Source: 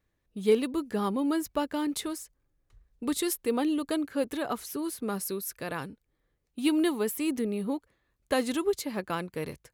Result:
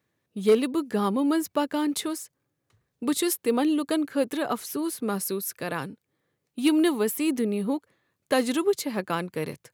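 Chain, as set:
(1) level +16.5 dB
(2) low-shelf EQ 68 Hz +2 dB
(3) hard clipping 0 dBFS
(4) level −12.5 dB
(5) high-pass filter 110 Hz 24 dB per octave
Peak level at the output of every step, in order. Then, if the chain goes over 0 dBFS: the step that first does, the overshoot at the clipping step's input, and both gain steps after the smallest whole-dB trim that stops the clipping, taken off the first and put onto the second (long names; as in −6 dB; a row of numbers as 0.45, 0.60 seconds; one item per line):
+4.0, +4.0, 0.0, −12.5, −9.0 dBFS
step 1, 4.0 dB
step 1 +12.5 dB, step 4 −8.5 dB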